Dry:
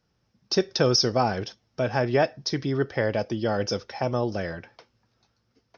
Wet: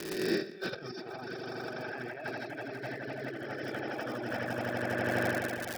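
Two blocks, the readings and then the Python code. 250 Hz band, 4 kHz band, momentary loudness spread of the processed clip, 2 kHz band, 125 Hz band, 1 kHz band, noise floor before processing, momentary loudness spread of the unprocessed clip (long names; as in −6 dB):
−7.5 dB, −14.5 dB, 9 LU, −1.0 dB, −12.5 dB, −9.0 dB, −73 dBFS, 11 LU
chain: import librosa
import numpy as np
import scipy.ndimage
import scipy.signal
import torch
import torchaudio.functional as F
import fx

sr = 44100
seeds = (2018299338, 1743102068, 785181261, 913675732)

p1 = fx.spec_swells(x, sr, rise_s=1.22)
p2 = fx.cabinet(p1, sr, low_hz=130.0, low_slope=24, high_hz=3700.0, hz=(190.0, 310.0, 520.0, 1000.0, 1600.0, 2500.0), db=(-5, 5, -6, -6, 6, 4))
p3 = p2 + fx.echo_swell(p2, sr, ms=82, loudest=5, wet_db=-6, dry=0)
p4 = fx.dmg_crackle(p3, sr, seeds[0], per_s=200.0, level_db=-26.0)
p5 = fx.over_compress(p4, sr, threshold_db=-28.0, ratio=-1.0)
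p6 = fx.dereverb_blind(p5, sr, rt60_s=1.5)
y = p6 * 10.0 ** (-5.5 / 20.0)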